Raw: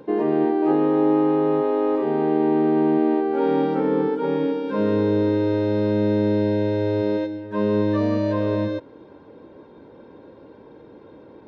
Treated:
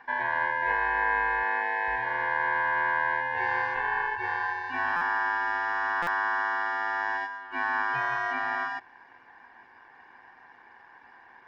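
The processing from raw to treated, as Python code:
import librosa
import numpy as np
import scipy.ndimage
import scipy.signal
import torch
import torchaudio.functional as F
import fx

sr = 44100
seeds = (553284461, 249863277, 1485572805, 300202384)

y = x * np.sin(2.0 * np.pi * 1300.0 * np.arange(len(x)) / sr)
y = fx.highpass(y, sr, hz=200.0, slope=12, at=(1.43, 1.88))
y = fx.buffer_glitch(y, sr, at_s=(4.96, 6.02), block=256, repeats=8)
y = y * librosa.db_to_amplitude(-5.0)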